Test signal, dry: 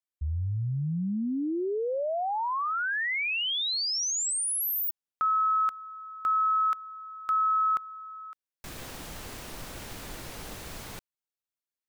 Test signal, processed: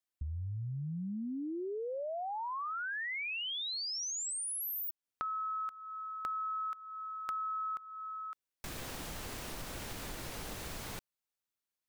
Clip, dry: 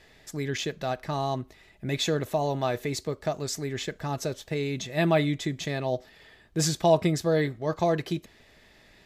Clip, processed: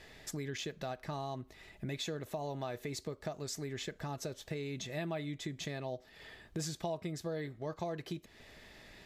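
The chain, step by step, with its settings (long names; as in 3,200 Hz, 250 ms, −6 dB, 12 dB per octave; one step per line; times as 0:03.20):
downward compressor 4 to 1, threshold −40 dBFS
level +1 dB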